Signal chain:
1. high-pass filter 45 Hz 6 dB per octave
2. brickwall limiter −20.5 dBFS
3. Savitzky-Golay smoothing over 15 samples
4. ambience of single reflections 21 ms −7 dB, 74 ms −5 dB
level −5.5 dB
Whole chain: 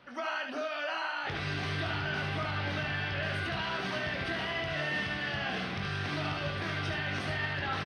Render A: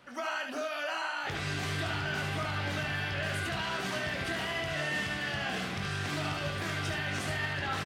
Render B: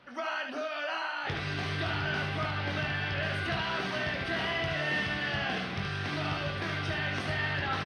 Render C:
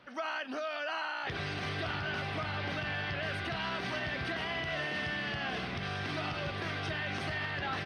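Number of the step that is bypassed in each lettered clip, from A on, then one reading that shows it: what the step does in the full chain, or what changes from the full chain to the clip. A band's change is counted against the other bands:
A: 3, 8 kHz band +9.5 dB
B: 2, change in momentary loudness spread +2 LU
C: 4, echo-to-direct ratio −3.0 dB to none audible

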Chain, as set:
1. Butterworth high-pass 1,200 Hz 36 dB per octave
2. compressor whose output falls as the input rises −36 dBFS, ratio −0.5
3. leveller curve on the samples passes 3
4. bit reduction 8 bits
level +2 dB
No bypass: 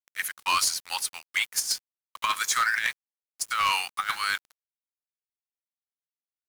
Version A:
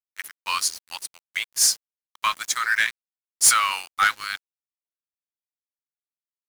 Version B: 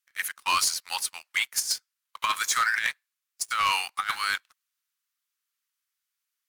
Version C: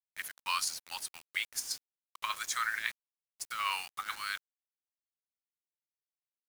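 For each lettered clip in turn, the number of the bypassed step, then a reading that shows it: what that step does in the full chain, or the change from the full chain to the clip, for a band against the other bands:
2, change in crest factor +3.5 dB
4, distortion level −25 dB
3, change in crest factor +9.0 dB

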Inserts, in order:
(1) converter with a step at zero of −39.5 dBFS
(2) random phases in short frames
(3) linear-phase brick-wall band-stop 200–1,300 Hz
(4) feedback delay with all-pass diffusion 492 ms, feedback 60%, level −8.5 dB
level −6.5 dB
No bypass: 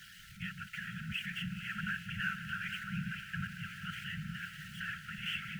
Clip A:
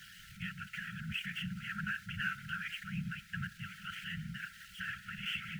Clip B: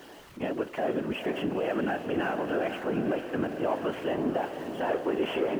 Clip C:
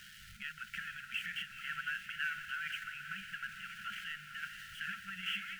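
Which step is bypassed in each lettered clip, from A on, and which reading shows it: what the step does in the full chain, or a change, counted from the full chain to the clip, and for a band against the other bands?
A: 4, echo-to-direct ratio −6.5 dB to none audible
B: 3, 1 kHz band +13.5 dB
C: 2, 125 Hz band −17.5 dB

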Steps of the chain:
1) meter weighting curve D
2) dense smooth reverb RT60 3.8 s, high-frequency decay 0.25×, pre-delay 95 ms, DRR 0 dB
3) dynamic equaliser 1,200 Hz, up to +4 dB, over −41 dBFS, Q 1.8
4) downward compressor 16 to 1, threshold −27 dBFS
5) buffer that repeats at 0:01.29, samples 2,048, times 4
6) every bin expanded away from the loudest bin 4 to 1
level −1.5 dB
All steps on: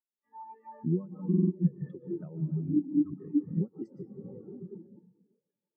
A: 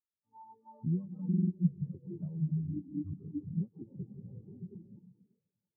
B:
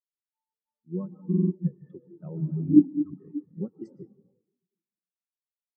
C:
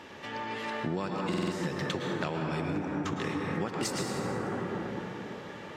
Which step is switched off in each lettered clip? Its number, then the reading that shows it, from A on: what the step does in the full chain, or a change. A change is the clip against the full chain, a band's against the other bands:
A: 1, change in crest factor +2.0 dB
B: 4, average gain reduction 7.0 dB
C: 6, change in momentary loudness spread −12 LU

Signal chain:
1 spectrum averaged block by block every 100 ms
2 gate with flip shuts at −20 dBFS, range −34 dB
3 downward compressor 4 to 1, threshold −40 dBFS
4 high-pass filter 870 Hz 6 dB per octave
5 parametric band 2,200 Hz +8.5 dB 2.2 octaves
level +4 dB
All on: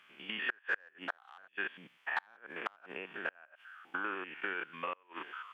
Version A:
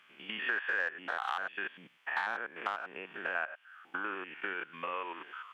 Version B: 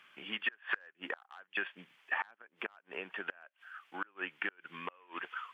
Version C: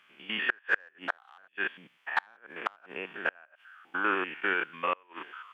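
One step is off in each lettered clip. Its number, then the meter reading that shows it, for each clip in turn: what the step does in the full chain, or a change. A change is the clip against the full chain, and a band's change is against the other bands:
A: 2, change in crest factor −2.5 dB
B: 1, 4 kHz band +2.5 dB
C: 3, change in crest factor +1.5 dB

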